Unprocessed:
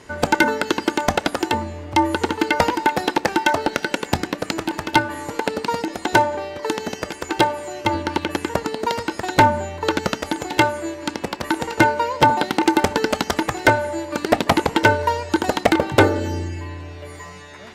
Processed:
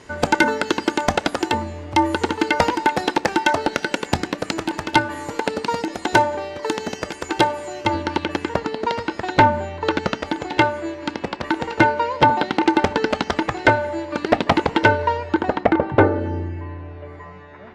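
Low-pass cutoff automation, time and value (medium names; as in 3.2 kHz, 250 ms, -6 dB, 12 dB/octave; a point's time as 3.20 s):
7.51 s 9.4 kHz
8.69 s 4.2 kHz
14.84 s 4.2 kHz
15.75 s 1.6 kHz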